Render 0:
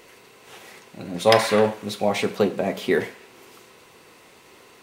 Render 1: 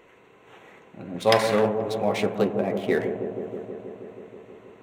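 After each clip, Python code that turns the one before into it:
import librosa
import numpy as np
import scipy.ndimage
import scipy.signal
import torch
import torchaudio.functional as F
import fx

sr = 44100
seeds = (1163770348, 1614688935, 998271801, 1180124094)

y = fx.wiener(x, sr, points=9)
y = fx.echo_wet_lowpass(y, sr, ms=160, feedback_pct=79, hz=690.0, wet_db=-6.5)
y = y * librosa.db_to_amplitude(-3.0)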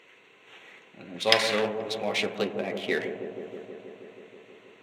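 y = fx.weighting(x, sr, curve='D')
y = y * librosa.db_to_amplitude(-5.5)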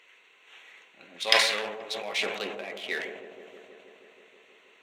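y = fx.highpass(x, sr, hz=1300.0, slope=6)
y = fx.sustainer(y, sr, db_per_s=57.0)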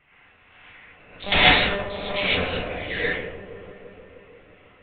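y = fx.env_lowpass(x, sr, base_hz=1900.0, full_db=-22.5)
y = fx.lpc_monotone(y, sr, seeds[0], pitch_hz=200.0, order=10)
y = fx.rev_gated(y, sr, seeds[1], gate_ms=170, shape='rising', drr_db=-7.5)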